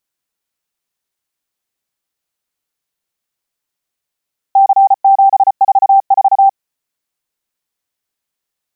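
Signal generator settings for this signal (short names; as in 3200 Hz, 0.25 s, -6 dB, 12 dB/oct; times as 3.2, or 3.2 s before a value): Morse "C744" 34 wpm 784 Hz -4 dBFS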